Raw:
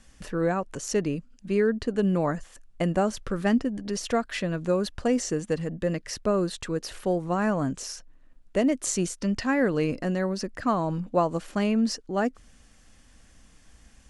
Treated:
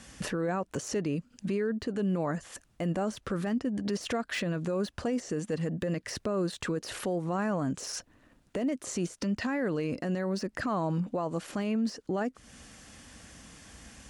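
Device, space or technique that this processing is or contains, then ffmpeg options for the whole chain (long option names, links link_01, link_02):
podcast mastering chain: -af "highpass=81,deesser=0.95,acompressor=threshold=-38dB:ratio=2.5,alimiter=level_in=7.5dB:limit=-24dB:level=0:latency=1:release=14,volume=-7.5dB,volume=9dB" -ar 44100 -c:a libmp3lame -b:a 112k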